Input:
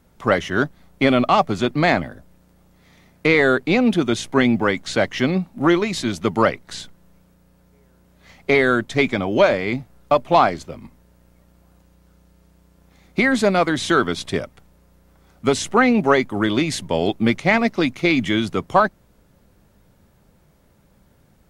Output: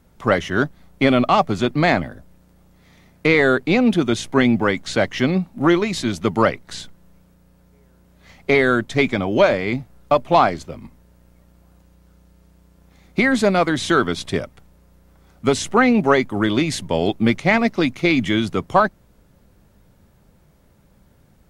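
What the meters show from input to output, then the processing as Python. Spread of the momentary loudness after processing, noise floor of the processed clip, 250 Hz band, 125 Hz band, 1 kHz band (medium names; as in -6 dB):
9 LU, -55 dBFS, +1.0 dB, +1.5 dB, 0.0 dB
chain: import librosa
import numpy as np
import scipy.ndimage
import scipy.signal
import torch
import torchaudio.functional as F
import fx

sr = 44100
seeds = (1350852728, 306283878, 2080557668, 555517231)

y = fx.low_shelf(x, sr, hz=170.0, db=3.0)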